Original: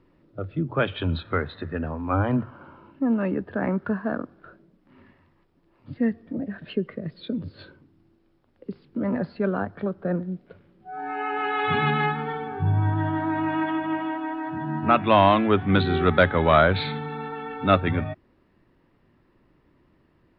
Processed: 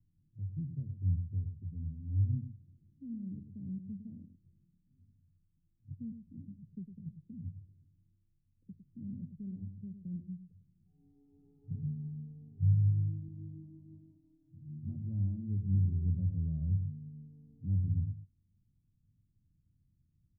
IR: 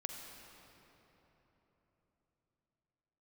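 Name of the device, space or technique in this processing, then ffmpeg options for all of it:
the neighbour's flat through the wall: -filter_complex "[0:a]asettb=1/sr,asplit=3[link_01][link_02][link_03];[link_01]atrim=end=13.284[link_04];[link_02]atrim=start=13.28:end=14.85,asetpts=PTS-STARTPTS,afade=type=in:duration=0.004:curve=qsin,afade=type=out:start_time=1.566:duration=0.004:curve=qsin,agate=range=-33dB:threshold=-24dB:ratio=3:detection=peak[link_05];[link_03]atrim=start=14.846[link_06];[link_04][link_05]acrossfade=duration=0.004:curve1=hsin:curve2=qsin[link_07];[link_07][link_06]acrossfade=duration=0.004:curve1=qsin:curve2=hsin,lowpass=frequency=170:width=0.5412,lowpass=frequency=170:width=1.3066,equalizer=frequency=95:width_type=o:width=0.5:gain=6,asplit=2[link_08][link_09];[link_09]adelay=105,volume=-9dB,highshelf=frequency=4000:gain=-2.36[link_10];[link_08][link_10]amix=inputs=2:normalize=0,volume=-8.5dB"

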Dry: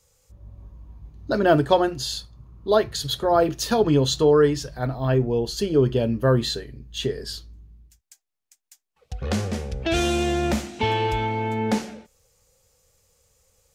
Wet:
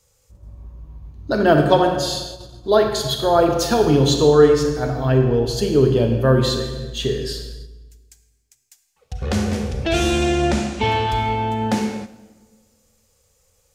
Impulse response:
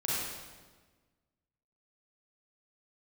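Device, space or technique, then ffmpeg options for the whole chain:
keyed gated reverb: -filter_complex "[0:a]asettb=1/sr,asplit=3[link_01][link_02][link_03];[link_01]atrim=end=10.114[link_04];[link_02]atrim=start=10.11:end=10.87,asetpts=PTS-STARTPTS,afade=type=in:duration=0.004:curve=qsin,afade=type=out:start_time=0.756:duration=0.004:curve=qsin,lowpass=frequency=9600:width=0.5412,lowpass=frequency=9600:width=1.3066[link_05];[link_03]atrim=start=10.866[link_06];[link_04][link_05]acrossfade=duration=0.004:curve1=hsin:curve2=qsin[link_07];[link_07][link_06]acrossfade=duration=0.004:curve1=qsin:curve2=hsin,asplit=3[link_08][link_09][link_10];[1:a]atrim=start_sample=2205[link_11];[link_09][link_11]afir=irnorm=-1:irlink=0[link_12];[link_10]apad=whole_len=606008[link_13];[link_12][link_13]sidechaingate=range=-7dB:threshold=-45dB:ratio=16:detection=peak,volume=-8dB[link_14];[link_08][link_14]amix=inputs=2:normalize=0"

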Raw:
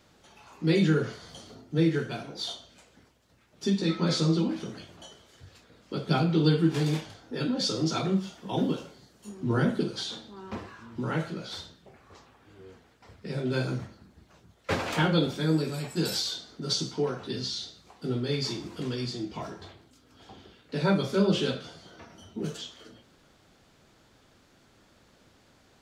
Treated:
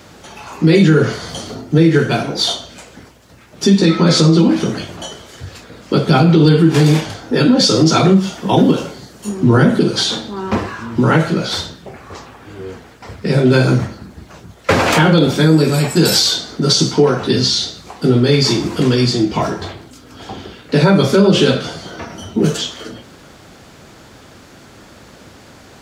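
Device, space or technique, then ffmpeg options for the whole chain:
mastering chain: -af "highpass=42,equalizer=frequency=3600:width_type=o:width=0.77:gain=-2.5,acompressor=threshold=-30dB:ratio=1.5,asoftclip=type=hard:threshold=-17.5dB,alimiter=level_in=21dB:limit=-1dB:release=50:level=0:latency=1,volume=-1dB"

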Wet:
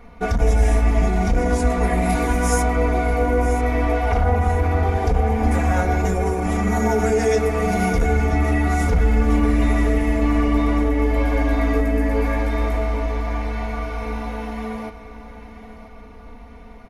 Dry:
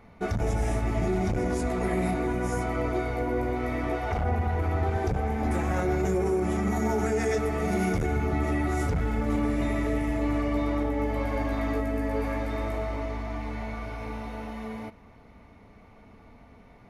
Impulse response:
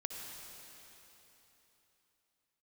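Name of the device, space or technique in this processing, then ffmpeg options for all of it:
low shelf boost with a cut just above: -filter_complex "[0:a]aecho=1:1:4.2:0.74,asplit=3[link_01][link_02][link_03];[link_01]afade=type=out:start_time=2.09:duration=0.02[link_04];[link_02]highshelf=frequency=3500:gain=11.5,afade=type=in:start_time=2.09:duration=0.02,afade=type=out:start_time=2.61:duration=0.02[link_05];[link_03]afade=type=in:start_time=2.61:duration=0.02[link_06];[link_04][link_05][link_06]amix=inputs=3:normalize=0,lowshelf=frequency=97:gain=7,equalizer=frequency=200:width_type=o:width=1.1:gain=-4.5,aecho=1:1:988|1976|2964|3952:0.211|0.0888|0.0373|0.0157,volume=5.5dB"

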